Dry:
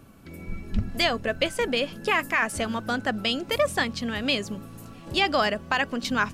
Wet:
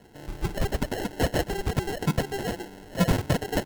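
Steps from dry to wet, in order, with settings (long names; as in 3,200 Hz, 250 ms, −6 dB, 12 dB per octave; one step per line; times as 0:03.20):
wrong playback speed 45 rpm record played at 78 rpm
Butterworth low-pass 4,800 Hz 48 dB per octave
parametric band 1,300 Hz +10.5 dB 0.36 octaves
notch filter 850 Hz, Q 12
on a send: single-tap delay 132 ms −22.5 dB
on the sum: decimation without filtering 37×
level −2.5 dB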